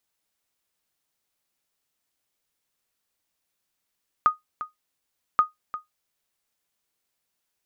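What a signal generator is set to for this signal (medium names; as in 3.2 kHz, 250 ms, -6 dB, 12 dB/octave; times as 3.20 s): sonar ping 1.24 kHz, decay 0.15 s, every 1.13 s, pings 2, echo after 0.35 s, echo -14 dB -9.5 dBFS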